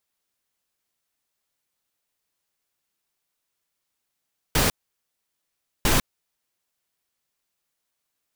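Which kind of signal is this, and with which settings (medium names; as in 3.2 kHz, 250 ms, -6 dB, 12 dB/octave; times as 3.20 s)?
noise bursts pink, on 0.15 s, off 1.15 s, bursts 2, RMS -19.5 dBFS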